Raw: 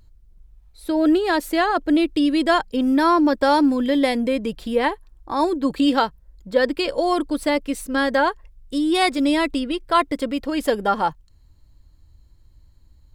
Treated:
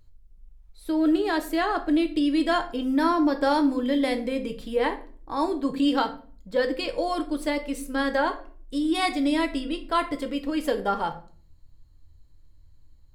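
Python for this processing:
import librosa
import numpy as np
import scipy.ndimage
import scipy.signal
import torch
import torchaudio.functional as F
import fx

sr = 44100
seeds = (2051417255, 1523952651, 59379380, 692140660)

y = fx.room_shoebox(x, sr, seeds[0], volume_m3=35.0, walls='mixed', distance_m=0.31)
y = F.gain(torch.from_numpy(y), -6.5).numpy()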